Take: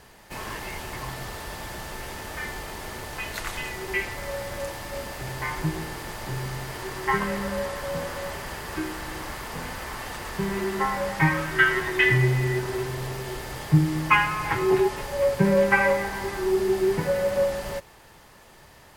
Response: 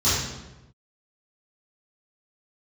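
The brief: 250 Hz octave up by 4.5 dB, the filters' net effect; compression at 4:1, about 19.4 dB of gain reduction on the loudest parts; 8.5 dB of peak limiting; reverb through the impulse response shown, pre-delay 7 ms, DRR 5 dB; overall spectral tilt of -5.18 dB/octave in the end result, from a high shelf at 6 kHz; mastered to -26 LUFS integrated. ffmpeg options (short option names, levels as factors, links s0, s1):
-filter_complex "[0:a]equalizer=f=250:t=o:g=8,highshelf=f=6000:g=8,acompressor=threshold=0.02:ratio=4,alimiter=level_in=1.68:limit=0.0631:level=0:latency=1,volume=0.596,asplit=2[s0][s1];[1:a]atrim=start_sample=2205,adelay=7[s2];[s1][s2]afir=irnorm=-1:irlink=0,volume=0.0891[s3];[s0][s3]amix=inputs=2:normalize=0,volume=2.37"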